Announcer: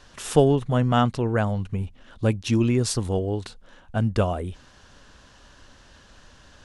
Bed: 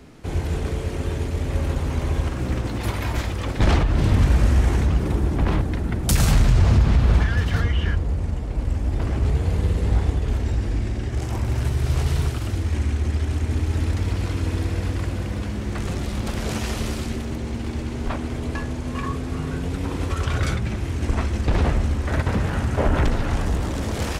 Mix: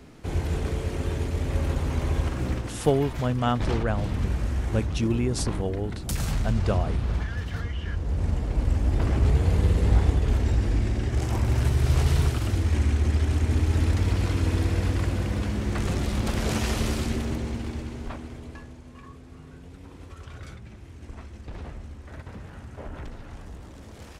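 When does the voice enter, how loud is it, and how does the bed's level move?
2.50 s, -4.5 dB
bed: 2.48 s -2.5 dB
2.78 s -10 dB
7.85 s -10 dB
8.26 s 0 dB
17.29 s 0 dB
18.95 s -18.5 dB

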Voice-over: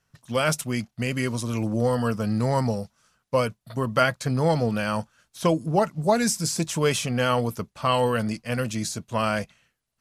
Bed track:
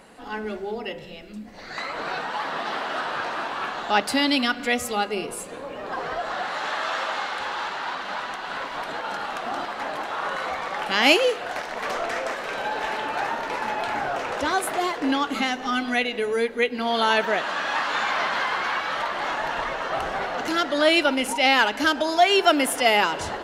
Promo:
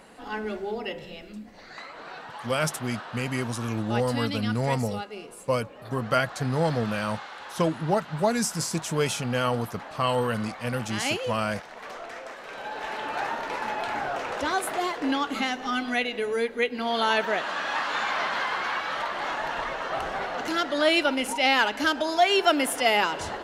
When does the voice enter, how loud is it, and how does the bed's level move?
2.15 s, -3.0 dB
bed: 1.27 s -1 dB
1.92 s -11.5 dB
12.31 s -11.5 dB
13.15 s -3 dB

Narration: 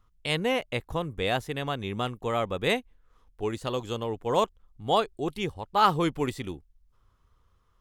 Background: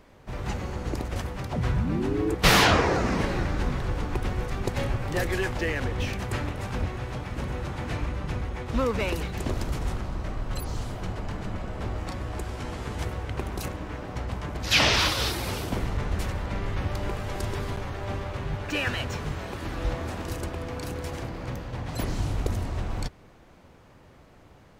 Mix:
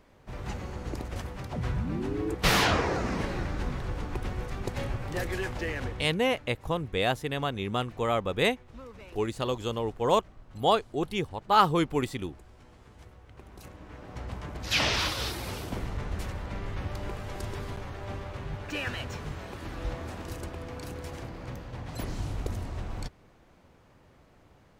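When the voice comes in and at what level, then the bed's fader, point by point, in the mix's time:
5.75 s, +0.5 dB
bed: 5.88 s -5 dB
6.23 s -20.5 dB
13.24 s -20.5 dB
14.27 s -5.5 dB

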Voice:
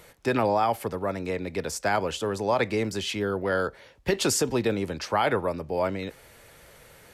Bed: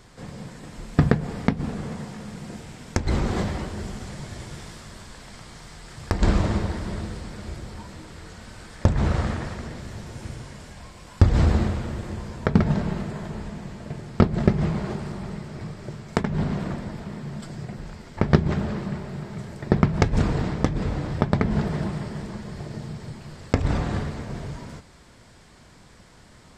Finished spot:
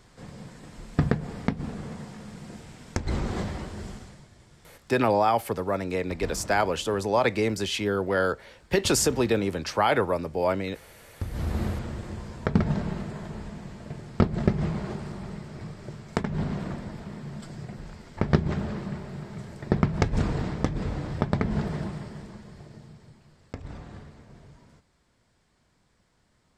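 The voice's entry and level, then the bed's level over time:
4.65 s, +1.5 dB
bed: 3.92 s -5 dB
4.31 s -17.5 dB
11.23 s -17.5 dB
11.68 s -4 dB
21.71 s -4 dB
23.35 s -17 dB

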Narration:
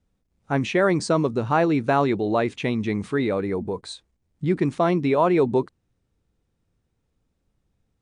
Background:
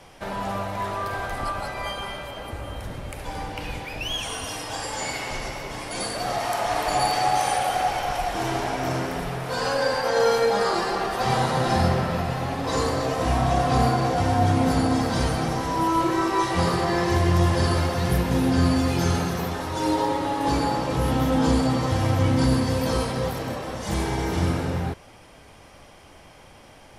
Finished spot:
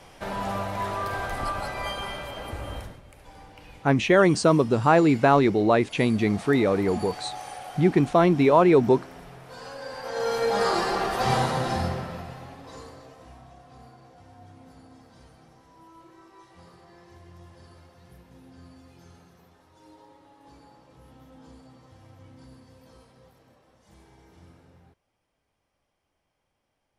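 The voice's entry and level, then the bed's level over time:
3.35 s, +2.0 dB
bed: 2.78 s -1 dB
3.02 s -15.5 dB
9.81 s -15.5 dB
10.64 s -0.5 dB
11.35 s -0.5 dB
13.59 s -29.5 dB

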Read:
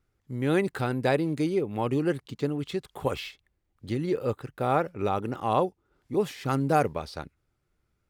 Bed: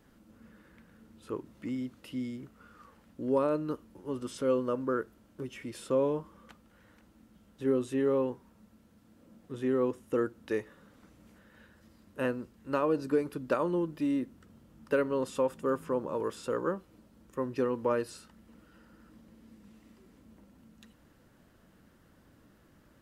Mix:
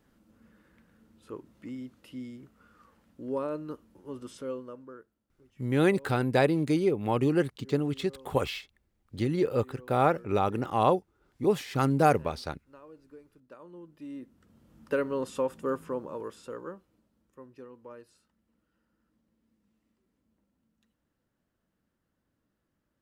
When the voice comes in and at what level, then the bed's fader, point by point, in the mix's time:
5.30 s, +1.0 dB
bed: 4.32 s -4.5 dB
5.26 s -23 dB
13.45 s -23 dB
14.76 s -0.5 dB
15.71 s -0.5 dB
17.66 s -18 dB

